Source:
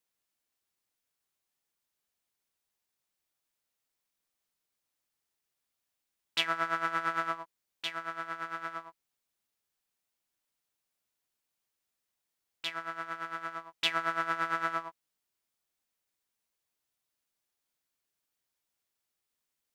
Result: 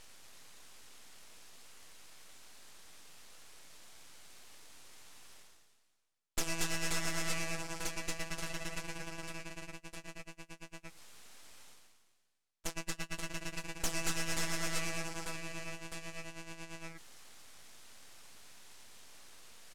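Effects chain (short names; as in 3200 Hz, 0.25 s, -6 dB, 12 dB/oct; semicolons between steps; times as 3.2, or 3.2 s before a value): in parallel at -2 dB: limiter -22 dBFS, peak gain reduction 10.5 dB; on the sum: gate -32 dBFS, range -29 dB; tilt +2.5 dB/oct; reverse bouncing-ball echo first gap 0.23 s, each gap 1.3×, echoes 5; hard clip -24 dBFS, distortion -7 dB; reverse; upward compressor, threshold -31 dBFS; reverse; EQ curve 140 Hz 0 dB, 1300 Hz -14 dB, 2100 Hz -29 dB, 6000 Hz -1 dB; full-wave rectifier; LPF 10000 Hz 12 dB/oct; gain +10 dB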